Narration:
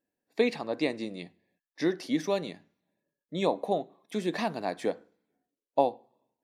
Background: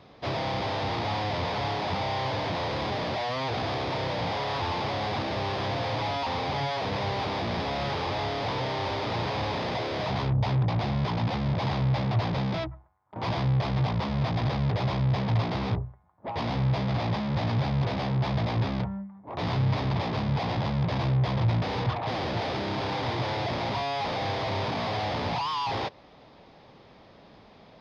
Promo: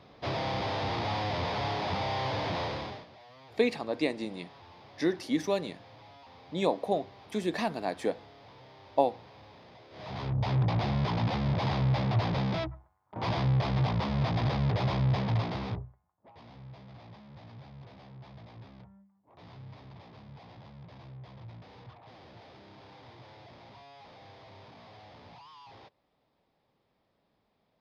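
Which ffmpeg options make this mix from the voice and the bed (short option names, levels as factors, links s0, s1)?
-filter_complex "[0:a]adelay=3200,volume=0.944[s0];[1:a]volume=9.44,afade=t=out:st=2.61:d=0.45:silence=0.0891251,afade=t=in:st=9.9:d=0.71:silence=0.0794328,afade=t=out:st=15.09:d=1.21:silence=0.0891251[s1];[s0][s1]amix=inputs=2:normalize=0"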